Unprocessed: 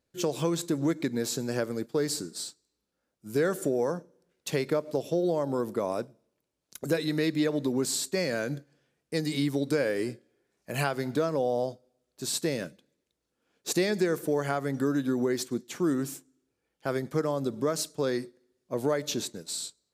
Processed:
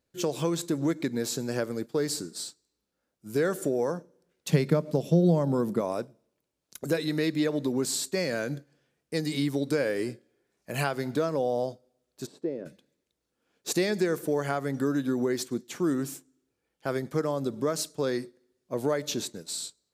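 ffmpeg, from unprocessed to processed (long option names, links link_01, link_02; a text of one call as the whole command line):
ffmpeg -i in.wav -filter_complex "[0:a]asettb=1/sr,asplit=3[link_01][link_02][link_03];[link_01]atrim=end=4.494[link_04];[link_02]atrim=start=4.49:end=5.81,asetpts=PTS-STARTPTS,afade=type=in:duration=0.004:curve=qsin,afade=type=out:start_time=1.316:duration=0.004:curve=qsin,equalizer=frequency=170:width_type=o:width=0.77:gain=15[link_05];[link_03]atrim=start=5.806[link_06];[link_04][link_05]acrossfade=duration=0.004:curve1=hsin:curve2=qsin[link_07];[link_07][link_06]acrossfade=duration=0.004:curve1=qsin:curve2=hsin,asplit=3[link_08][link_09][link_10];[link_08]afade=type=out:start_time=12.25:duration=0.02[link_11];[link_09]bandpass=frequency=380:width_type=q:width=1.7,afade=type=in:start_time=12.25:duration=0.02,afade=type=out:start_time=12.65:duration=0.02[link_12];[link_10]afade=type=in:start_time=12.65:duration=0.02[link_13];[link_11][link_12][link_13]amix=inputs=3:normalize=0" out.wav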